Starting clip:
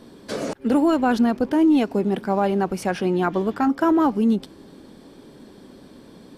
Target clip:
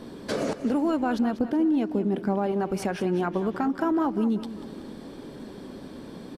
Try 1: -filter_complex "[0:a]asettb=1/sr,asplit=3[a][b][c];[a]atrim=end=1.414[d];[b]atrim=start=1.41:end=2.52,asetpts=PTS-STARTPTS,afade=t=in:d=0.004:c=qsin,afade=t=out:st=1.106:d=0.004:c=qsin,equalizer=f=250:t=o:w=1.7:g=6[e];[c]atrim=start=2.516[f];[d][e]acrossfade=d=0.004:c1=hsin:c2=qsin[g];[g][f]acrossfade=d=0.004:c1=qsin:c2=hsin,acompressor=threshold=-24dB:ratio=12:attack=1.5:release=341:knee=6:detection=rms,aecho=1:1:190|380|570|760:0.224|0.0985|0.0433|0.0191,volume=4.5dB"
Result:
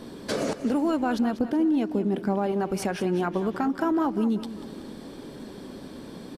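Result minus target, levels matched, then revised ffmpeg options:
8000 Hz band +3.5 dB
-filter_complex "[0:a]asettb=1/sr,asplit=3[a][b][c];[a]atrim=end=1.414[d];[b]atrim=start=1.41:end=2.52,asetpts=PTS-STARTPTS,afade=t=in:d=0.004:c=qsin,afade=t=out:st=1.106:d=0.004:c=qsin,equalizer=f=250:t=o:w=1.7:g=6[e];[c]atrim=start=2.516[f];[d][e]acrossfade=d=0.004:c1=hsin:c2=qsin[g];[g][f]acrossfade=d=0.004:c1=qsin:c2=hsin,acompressor=threshold=-24dB:ratio=12:attack=1.5:release=341:knee=6:detection=rms,highshelf=f=3.6k:g=-4.5,aecho=1:1:190|380|570|760:0.224|0.0985|0.0433|0.0191,volume=4.5dB"

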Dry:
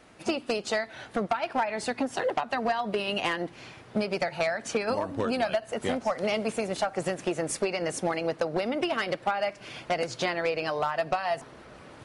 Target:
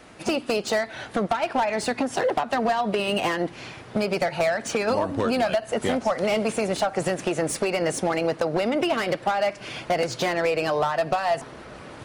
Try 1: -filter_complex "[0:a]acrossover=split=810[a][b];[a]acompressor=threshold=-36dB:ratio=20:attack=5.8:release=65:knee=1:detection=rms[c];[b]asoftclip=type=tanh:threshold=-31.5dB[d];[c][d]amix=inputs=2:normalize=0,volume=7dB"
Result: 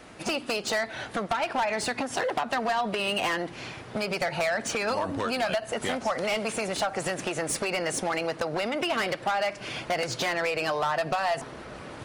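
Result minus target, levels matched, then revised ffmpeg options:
compressor: peak gain reduction +8.5 dB
-filter_complex "[0:a]acrossover=split=810[a][b];[a]acompressor=threshold=-27dB:ratio=20:attack=5.8:release=65:knee=1:detection=rms[c];[b]asoftclip=type=tanh:threshold=-31.5dB[d];[c][d]amix=inputs=2:normalize=0,volume=7dB"

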